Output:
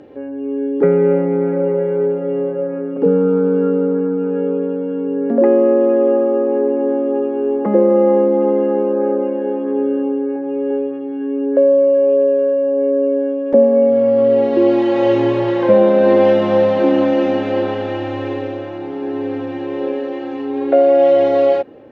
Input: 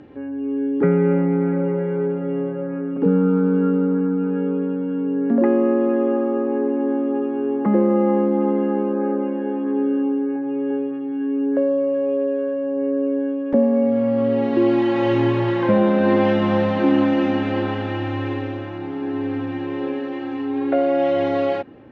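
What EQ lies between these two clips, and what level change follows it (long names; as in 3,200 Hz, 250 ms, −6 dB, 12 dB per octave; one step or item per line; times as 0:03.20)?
parametric band 520 Hz +13 dB 1.3 octaves
high-shelf EQ 3,200 Hz +11 dB
−4.0 dB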